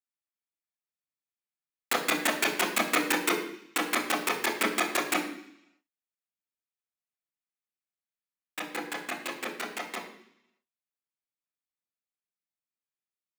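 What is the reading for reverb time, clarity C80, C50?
0.70 s, 10.0 dB, 7.0 dB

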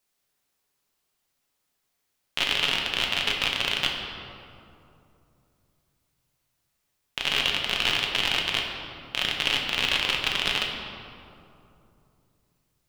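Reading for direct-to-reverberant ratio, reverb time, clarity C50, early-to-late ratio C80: -0.5 dB, 2.8 s, 3.0 dB, 4.5 dB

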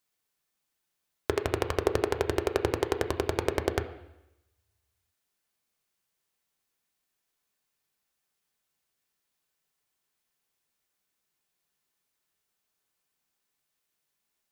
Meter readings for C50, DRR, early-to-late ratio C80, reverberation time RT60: 12.0 dB, 6.0 dB, 14.0 dB, 0.90 s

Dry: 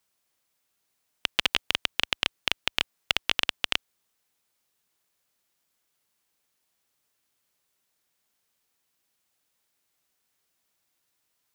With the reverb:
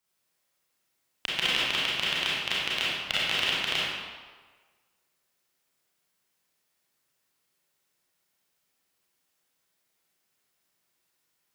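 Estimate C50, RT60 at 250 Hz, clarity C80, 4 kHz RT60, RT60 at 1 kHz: -3.5 dB, 1.3 s, 0.0 dB, 1.0 s, 1.5 s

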